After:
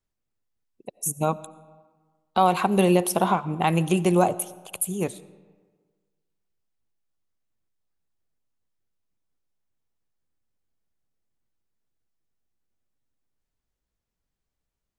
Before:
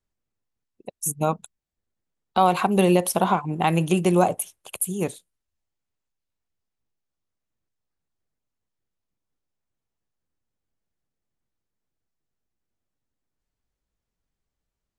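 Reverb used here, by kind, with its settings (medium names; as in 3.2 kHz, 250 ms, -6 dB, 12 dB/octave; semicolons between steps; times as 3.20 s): algorithmic reverb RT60 1.5 s, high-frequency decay 0.6×, pre-delay 50 ms, DRR 19 dB; trim -1 dB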